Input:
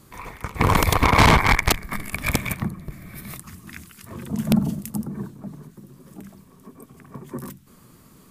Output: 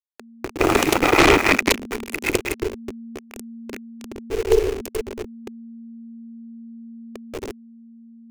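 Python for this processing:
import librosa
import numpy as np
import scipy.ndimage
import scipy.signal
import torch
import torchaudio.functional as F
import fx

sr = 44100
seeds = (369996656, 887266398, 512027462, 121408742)

y = fx.delta_hold(x, sr, step_db=-24.5)
y = y * np.sin(2.0 * np.pi * 230.0 * np.arange(len(y)) / sr)
y = fx.graphic_eq_15(y, sr, hz=(160, 400, 2500, 6300), db=(-12, 9, 6, 4))
y = y * librosa.db_to_amplitude(1.0)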